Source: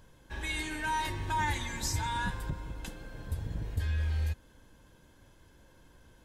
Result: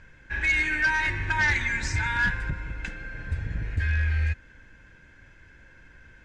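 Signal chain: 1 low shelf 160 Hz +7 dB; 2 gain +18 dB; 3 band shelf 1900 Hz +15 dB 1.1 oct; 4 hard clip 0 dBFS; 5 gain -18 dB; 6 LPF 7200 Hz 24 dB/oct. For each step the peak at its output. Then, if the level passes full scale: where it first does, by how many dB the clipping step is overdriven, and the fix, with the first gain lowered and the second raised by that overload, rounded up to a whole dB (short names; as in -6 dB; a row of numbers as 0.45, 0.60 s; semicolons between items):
-16.0, +2.0, +7.5, 0.0, -18.0, -17.0 dBFS; step 2, 7.5 dB; step 2 +10 dB, step 5 -10 dB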